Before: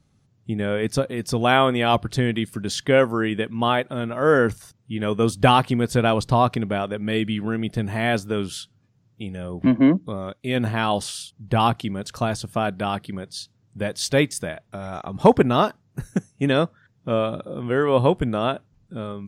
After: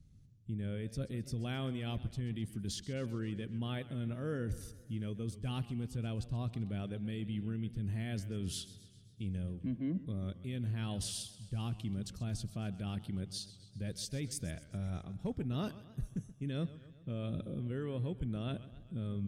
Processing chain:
guitar amp tone stack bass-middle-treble 10-0-1
reversed playback
downward compressor 12 to 1, threshold −46 dBFS, peak gain reduction 19 dB
reversed playback
brickwall limiter −42.5 dBFS, peak gain reduction 6 dB
feedback echo with a swinging delay time 131 ms, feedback 57%, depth 125 cents, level −16 dB
level +13.5 dB

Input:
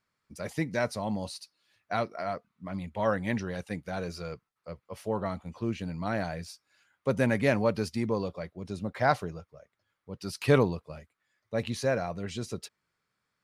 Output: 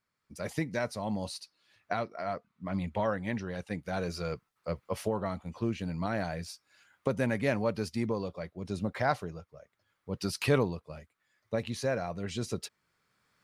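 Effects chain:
camcorder AGC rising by 9 dB per second
0:01.40–0:03.79: high-shelf EQ 8,100 Hz −7.5 dB
level −4 dB

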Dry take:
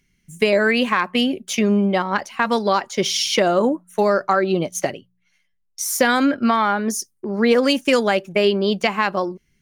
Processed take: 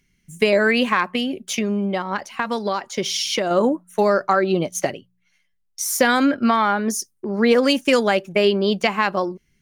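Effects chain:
0:01.03–0:03.51: downward compressor 2.5 to 1, threshold −21 dBFS, peak gain reduction 6.5 dB

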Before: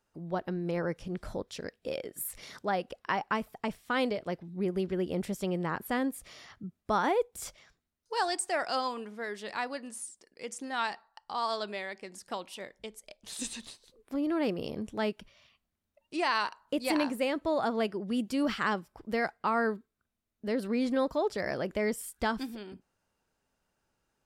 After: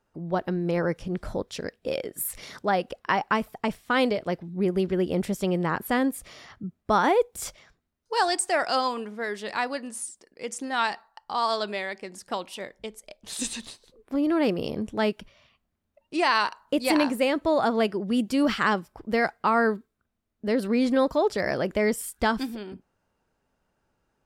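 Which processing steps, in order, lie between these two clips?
one half of a high-frequency compander decoder only
level +6.5 dB

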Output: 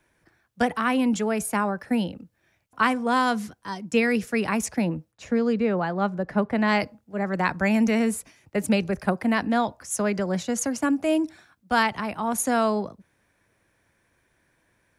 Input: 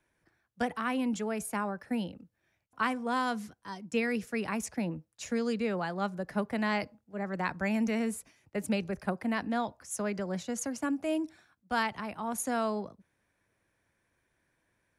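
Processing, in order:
0:05.11–0:06.67: low-pass filter 1,200 Hz → 2,300 Hz 6 dB per octave
level +8.5 dB

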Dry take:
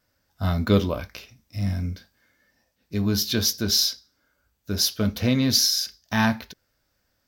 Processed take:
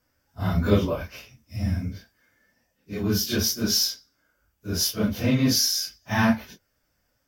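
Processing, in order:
random phases in long frames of 100 ms
parametric band 4,000 Hz −9.5 dB 0.28 octaves

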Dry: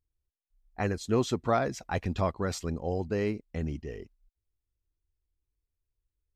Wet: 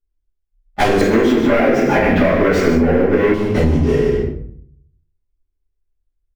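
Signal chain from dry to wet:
spectral magnitudes quantised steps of 15 dB
parametric band 120 Hz −9.5 dB 0.36 octaves
leveller curve on the samples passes 5
loudspeakers that aren't time-aligned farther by 34 metres −10 dB, 51 metres −8 dB
rectangular room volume 81 cubic metres, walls mixed, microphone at 2.5 metres
speech leveller
0:01.01–0:03.34: octave-band graphic EQ 125/250/500/2,000/4,000/8,000 Hz −4/+8/+7/+12/−6/−11 dB
downward compressor 10 to 1, threshold −12 dBFS, peak gain reduction 16 dB
one half of a high-frequency compander decoder only
level +1.5 dB

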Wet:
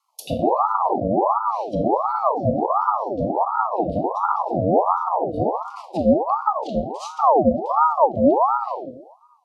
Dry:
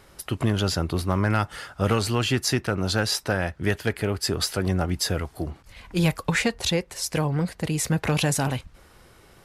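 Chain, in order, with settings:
source passing by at 0:02.93, 14 m/s, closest 16 metres
mains-hum notches 60/120/180/240 Hz
feedback echo with a low-pass in the loop 63 ms, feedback 71%, low-pass 2,300 Hz, level −14.5 dB
noise gate −51 dBFS, range −25 dB
Chebyshev band-stop filter 310–3,300 Hz, order 5
in parallel at +1.5 dB: brickwall limiter −30 dBFS, peak gain reduction 18 dB
on the sum: speech leveller within 4 dB 2 s
treble cut that deepens with the level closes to 370 Hz, closed at −24 dBFS
rectangular room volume 830 cubic metres, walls furnished, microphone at 2 metres
ring modulator whose carrier an LFO sweeps 740 Hz, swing 50%, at 1.4 Hz
level +8 dB

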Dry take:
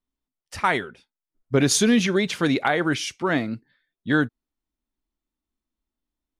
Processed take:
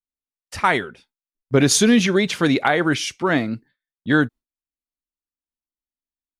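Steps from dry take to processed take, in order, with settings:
noise gate with hold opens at −50 dBFS
level +3.5 dB

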